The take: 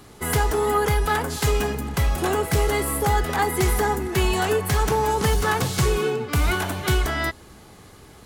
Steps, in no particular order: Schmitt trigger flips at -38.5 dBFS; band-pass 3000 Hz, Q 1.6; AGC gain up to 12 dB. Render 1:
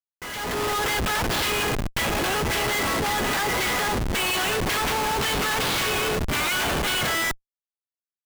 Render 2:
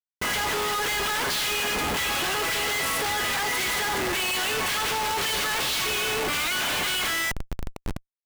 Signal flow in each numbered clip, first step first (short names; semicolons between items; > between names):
band-pass > Schmitt trigger > AGC; AGC > band-pass > Schmitt trigger